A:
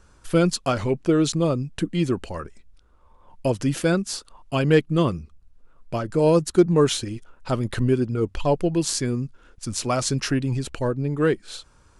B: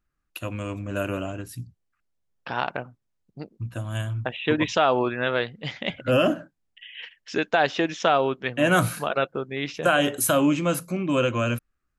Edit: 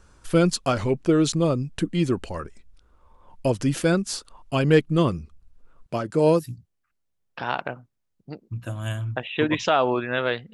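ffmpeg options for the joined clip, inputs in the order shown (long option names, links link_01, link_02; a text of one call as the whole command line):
ffmpeg -i cue0.wav -i cue1.wav -filter_complex "[0:a]asettb=1/sr,asplit=3[link_01][link_02][link_03];[link_01]atrim=end=5.864[link_04];[link_02]atrim=start=5.86:end=6.46,asetpts=PTS-STARTPTS,afade=type=in:duration=0.004:curve=qsin,afade=type=out:start_time=0.596:duration=0.004:curve=qsin,highpass=120[link_05];[link_03]atrim=start=6.456[link_06];[link_04][link_05]acrossfade=duration=0.004:curve1=hsin:curve2=qsin[link_07];[link_07][link_06]acrossfade=duration=0.004:curve1=qsin:curve2=hsin,apad=whole_dur=10.53,atrim=end=10.53,atrim=end=6.46,asetpts=PTS-STARTPTS[link_08];[1:a]atrim=start=1.41:end=5.62,asetpts=PTS-STARTPTS[link_09];[link_08][link_09]acrossfade=duration=0.14:curve1=tri:curve2=tri" out.wav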